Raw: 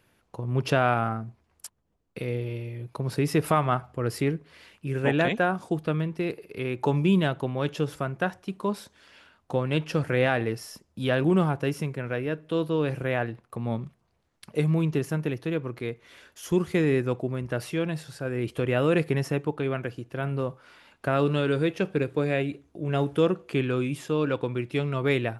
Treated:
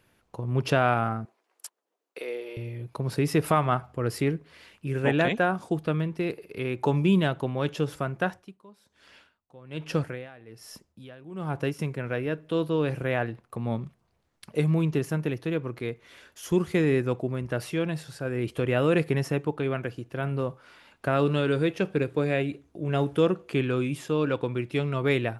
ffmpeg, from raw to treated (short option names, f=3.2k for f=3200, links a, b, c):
-filter_complex "[0:a]asettb=1/sr,asplit=3[a][b][c];[a]atrim=end=1.254[d];[b]atrim=start=1.25:end=2.57,asetpts=PTS-STARTPTS,afade=t=in:d=0.004:c=qsin,afade=t=out:st=1.316:d=0.004:c=qsin,highpass=f=370:w=0.5412,highpass=f=370:w=1.3066[e];[c]atrim=start=2.566[f];[d][e]acrossfade=d=0.004:c1=hsin:c2=qsin[g];[g][f]acrossfade=d=0.004:c1=qsin:c2=hsin,asettb=1/sr,asplit=3[h][i][j];[h]atrim=end=8.284[k];[i]atrim=start=8.28:end=11.79,asetpts=PTS-STARTPTS,afade=t=in:d=0.004:c=qsin,afade=t=out:st=3.506:d=0.004:c=qsin,aeval=exprs='val(0)*pow(10,-24*(0.5-0.5*cos(2*PI*1.2*n/s))/20)':c=same[l];[j]atrim=start=11.786[m];[k][l]acrossfade=d=0.004:c1=hsin:c2=qsin[n];[n][m]acrossfade=d=0.004:c1=qsin:c2=hsin"